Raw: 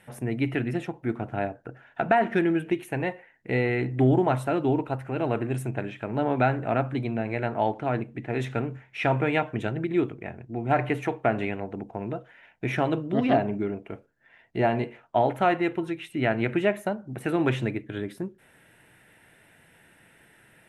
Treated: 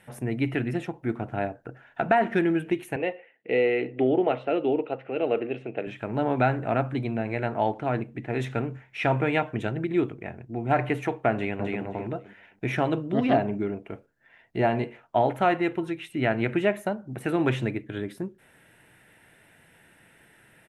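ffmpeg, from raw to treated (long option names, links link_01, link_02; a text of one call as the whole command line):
ffmpeg -i in.wav -filter_complex "[0:a]asettb=1/sr,asplit=3[link_01][link_02][link_03];[link_01]atrim=end=2.964[link_04];[link_02]atrim=start=2.96:end=5.87,asetpts=PTS-STARTPTS,afade=type=in:duration=0.004:curve=qsin,afade=type=out:start_time=2.906:duration=0.004:curve=qsin,highpass=290,equalizer=frequency=480:width_type=q:width=4:gain=8,equalizer=frequency=980:width_type=q:width=4:gain=-10,equalizer=frequency=1600:width_type=q:width=4:gain=-7,equalizer=frequency=2800:width_type=q:width=4:gain=6,lowpass=frequency=3500:width=0.5412,lowpass=frequency=3500:width=1.3066[link_05];[link_03]atrim=start=5.866[link_06];[link_04][link_05]acrossfade=duration=0.004:curve1=hsin:curve2=qsin[link_07];[link_07][link_06]acrossfade=duration=0.004:curve1=qsin:curve2=hsin,asplit=2[link_08][link_09];[link_09]afade=type=in:start_time=11.33:duration=0.01,afade=type=out:start_time=11.81:duration=0.01,aecho=0:1:260|520|780:0.749894|0.149979|0.0299958[link_10];[link_08][link_10]amix=inputs=2:normalize=0" out.wav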